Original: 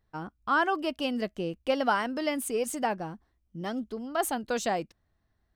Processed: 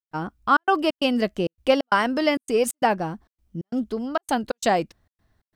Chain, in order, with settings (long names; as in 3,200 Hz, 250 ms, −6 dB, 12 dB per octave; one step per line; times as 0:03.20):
gate pattern ".xxxx.xx" 133 BPM −60 dB
level +8.5 dB